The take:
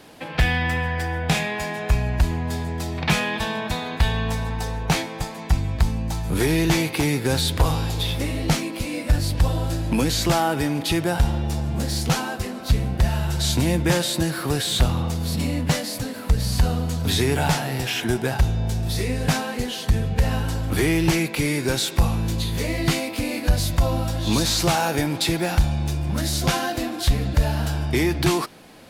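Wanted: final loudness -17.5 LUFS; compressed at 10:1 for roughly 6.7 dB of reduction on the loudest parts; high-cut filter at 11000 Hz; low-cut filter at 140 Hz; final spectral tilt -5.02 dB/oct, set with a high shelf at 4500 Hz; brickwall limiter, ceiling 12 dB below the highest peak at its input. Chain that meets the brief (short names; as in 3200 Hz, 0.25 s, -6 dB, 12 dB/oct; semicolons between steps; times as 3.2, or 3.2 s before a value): HPF 140 Hz; LPF 11000 Hz; high shelf 4500 Hz -7 dB; compressor 10:1, threshold -23 dBFS; gain +14 dB; limiter -8.5 dBFS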